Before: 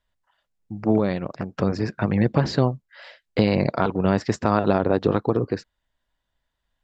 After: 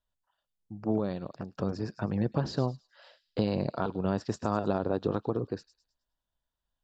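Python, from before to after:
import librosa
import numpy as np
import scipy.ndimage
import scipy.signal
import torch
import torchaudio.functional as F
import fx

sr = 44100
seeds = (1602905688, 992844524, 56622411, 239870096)

y = fx.peak_eq(x, sr, hz=2100.0, db=-12.5, octaves=0.44)
y = fx.echo_wet_highpass(y, sr, ms=105, feedback_pct=38, hz=5100.0, wet_db=-8.0)
y = y * librosa.db_to_amplitude(-9.0)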